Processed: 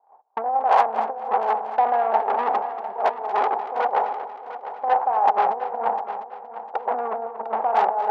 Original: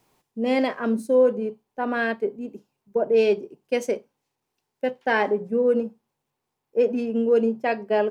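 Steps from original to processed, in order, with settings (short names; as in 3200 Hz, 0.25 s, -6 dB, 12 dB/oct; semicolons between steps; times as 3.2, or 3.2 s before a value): per-bin compression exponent 0.6; steep low-pass 1200 Hz; gate -41 dBFS, range -42 dB; negative-ratio compressor -26 dBFS, ratio -0.5; tube stage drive 28 dB, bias 0.65; resonant high-pass 800 Hz, resonance Q 7.5; multi-head echo 0.234 s, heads first and third, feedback 41%, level -13 dB; gain +9 dB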